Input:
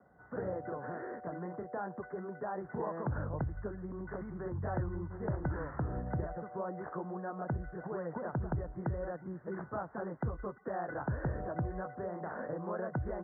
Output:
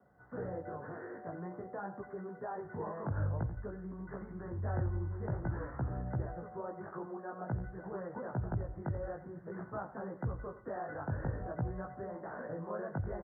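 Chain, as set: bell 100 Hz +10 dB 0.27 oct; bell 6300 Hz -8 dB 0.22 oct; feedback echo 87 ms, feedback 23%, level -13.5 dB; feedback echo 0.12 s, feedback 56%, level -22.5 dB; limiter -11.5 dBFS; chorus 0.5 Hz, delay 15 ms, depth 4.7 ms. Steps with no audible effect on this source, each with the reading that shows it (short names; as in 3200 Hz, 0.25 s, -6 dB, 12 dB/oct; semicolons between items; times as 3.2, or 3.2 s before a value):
bell 6300 Hz: input band ends at 1500 Hz; limiter -11.5 dBFS: input peak -21.5 dBFS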